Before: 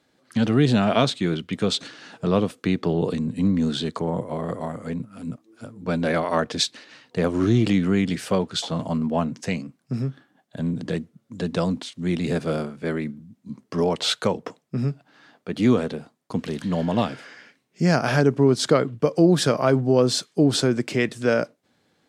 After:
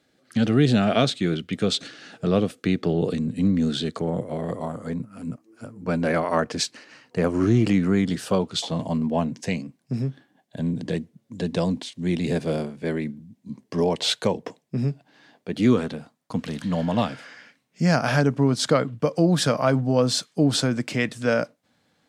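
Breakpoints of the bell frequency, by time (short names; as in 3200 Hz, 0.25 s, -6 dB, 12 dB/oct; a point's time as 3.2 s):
bell -11 dB 0.29 oct
4.33 s 980 Hz
5.08 s 3600 Hz
7.73 s 3600 Hz
8.74 s 1300 Hz
15.52 s 1300 Hz
15.97 s 380 Hz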